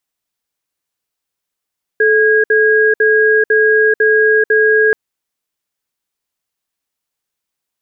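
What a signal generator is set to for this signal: cadence 434 Hz, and 1.64 kHz, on 0.44 s, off 0.06 s, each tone -10.5 dBFS 2.93 s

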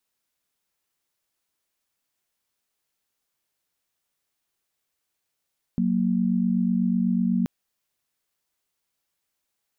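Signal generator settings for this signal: chord F#3/A#3 sine, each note -22.5 dBFS 1.68 s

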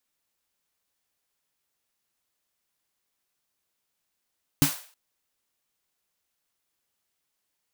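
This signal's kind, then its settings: snare drum length 0.32 s, tones 150 Hz, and 280 Hz, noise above 550 Hz, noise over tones -6 dB, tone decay 0.13 s, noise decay 0.44 s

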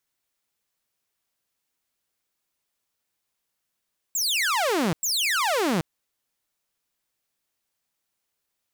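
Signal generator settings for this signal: burst of laser zaps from 7.8 kHz, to 150 Hz, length 0.78 s saw, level -18.5 dB, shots 2, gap 0.10 s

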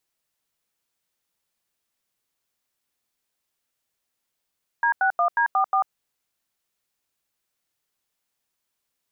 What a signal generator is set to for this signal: DTMF "D61D44", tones 93 ms, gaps 87 ms, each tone -20 dBFS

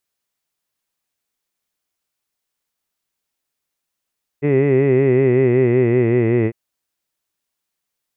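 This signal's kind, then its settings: formant-synthesis vowel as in hid, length 2.10 s, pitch 140 Hz, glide -3.5 st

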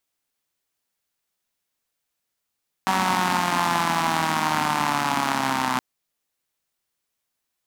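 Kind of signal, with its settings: four-cylinder engine model, changing speed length 2.92 s, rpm 5700, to 3800, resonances 240/890 Hz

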